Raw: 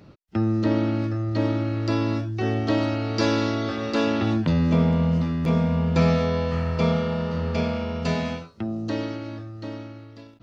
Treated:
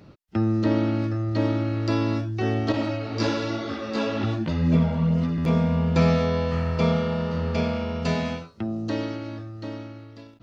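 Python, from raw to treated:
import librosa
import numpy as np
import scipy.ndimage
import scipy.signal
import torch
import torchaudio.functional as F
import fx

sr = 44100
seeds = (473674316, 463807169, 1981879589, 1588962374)

y = fx.chorus_voices(x, sr, voices=2, hz=1.0, base_ms=16, depth_ms=3.8, mix_pct=60, at=(2.72, 5.38))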